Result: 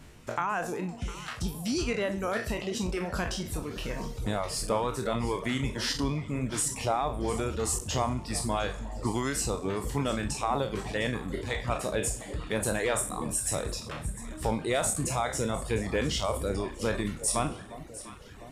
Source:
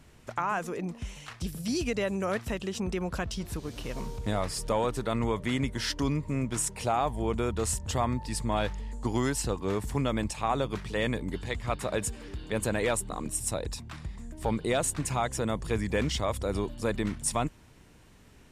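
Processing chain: spectral sustain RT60 0.78 s; in parallel at +2 dB: compression, threshold -36 dBFS, peak gain reduction 14 dB; on the sum: echo whose repeats swap between lows and highs 352 ms, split 910 Hz, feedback 72%, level -12 dB; reverb removal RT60 0.81 s; trim -3.5 dB

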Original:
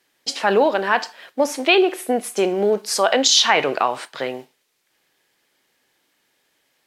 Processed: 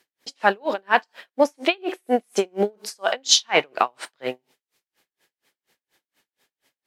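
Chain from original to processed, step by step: logarithmic tremolo 4.2 Hz, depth 39 dB; trim +2.5 dB

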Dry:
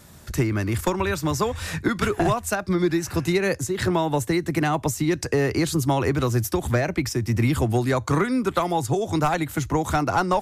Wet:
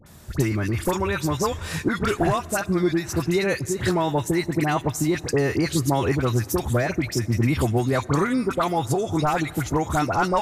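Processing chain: phase dispersion highs, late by 63 ms, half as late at 1.4 kHz; on a send: reverberation RT60 3.1 s, pre-delay 83 ms, DRR 21 dB

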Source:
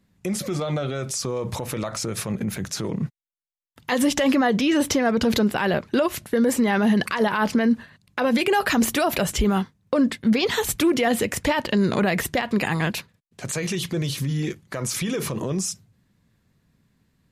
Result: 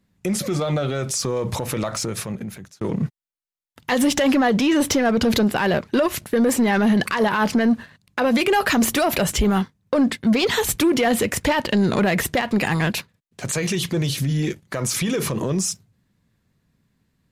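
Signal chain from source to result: 14.10–14.62 s: peaking EQ 1.1 kHz -8 dB 0.34 oct; waveshaping leveller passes 1; 1.91–2.81 s: fade out

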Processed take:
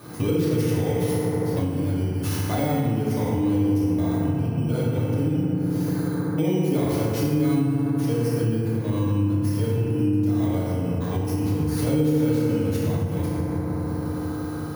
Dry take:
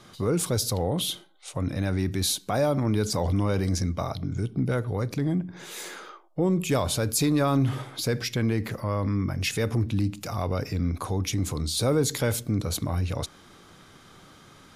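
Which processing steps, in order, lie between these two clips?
bit-reversed sample order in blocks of 16 samples; tilt EQ -1.5 dB/octave; FDN reverb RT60 3.5 s, high-frequency decay 0.3×, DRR -9.5 dB; compression 6:1, threshold -26 dBFS, peak gain reduction 23 dB; high-pass 96 Hz; flutter echo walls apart 10.2 m, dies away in 0.32 s; trim +5 dB

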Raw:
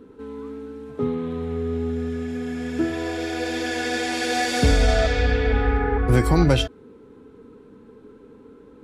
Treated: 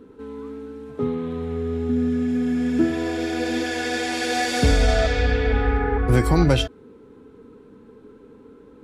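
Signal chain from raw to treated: 1.89–3.64 s: peaking EQ 220 Hz +9.5 dB 0.77 oct

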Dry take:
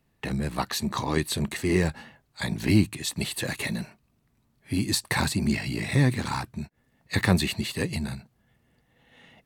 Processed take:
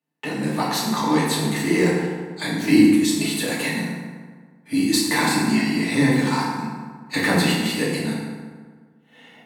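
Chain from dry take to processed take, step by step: gate -60 dBFS, range -16 dB; Chebyshev high-pass 190 Hz, order 3; FDN reverb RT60 1.6 s, low-frequency decay 1.05×, high-frequency decay 0.55×, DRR -6.5 dB

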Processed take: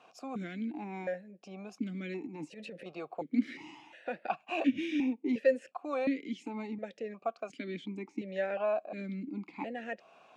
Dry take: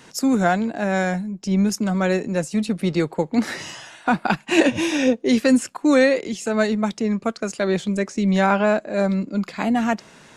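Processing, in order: in parallel at +3 dB: compression, threshold -28 dBFS, peak gain reduction 16.5 dB; 2.20–2.86 s: on the sum: transient shaper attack -11 dB, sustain +6 dB; stepped vowel filter 2.8 Hz; trim -6 dB

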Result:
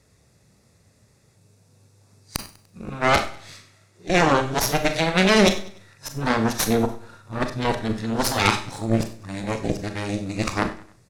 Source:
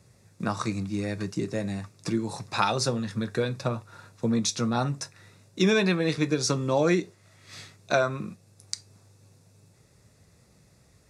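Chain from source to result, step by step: reverse the whole clip; Chebyshev shaper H 6 -6 dB, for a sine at -7 dBFS; on a send: feedback delay 98 ms, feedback 44%, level -20 dB; on the sum: Schroeder reverb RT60 0.35 s, combs from 28 ms, DRR 7 dB

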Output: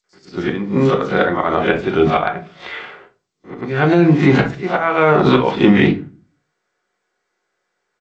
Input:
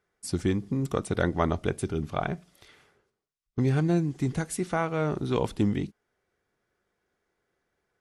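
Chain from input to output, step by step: reverse spectral sustain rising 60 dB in 0.30 s; gate with hold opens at -55 dBFS; high-pass 1.4 kHz 6 dB/octave; slow attack 462 ms; distance through air 360 m; bands offset in time highs, lows 40 ms, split 4.5 kHz; simulated room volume 160 m³, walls furnished, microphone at 0.96 m; loudness maximiser +32.5 dB; trim -1 dB; G.722 64 kbps 16 kHz

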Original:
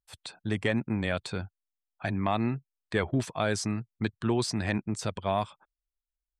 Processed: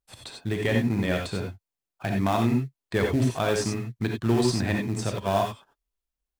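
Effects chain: in parallel at -9 dB: sample-rate reducer 2.2 kHz, jitter 20%; on the sum: reverberation, pre-delay 3 ms, DRR 1.5 dB

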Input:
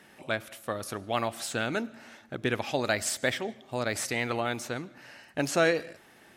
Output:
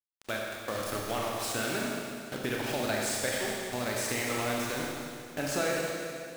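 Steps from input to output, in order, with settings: bit crusher 6-bit; compression 2.5:1, threshold -30 dBFS, peak gain reduction 8 dB; Schroeder reverb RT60 2.4 s, combs from 29 ms, DRR -2.5 dB; trim -2 dB

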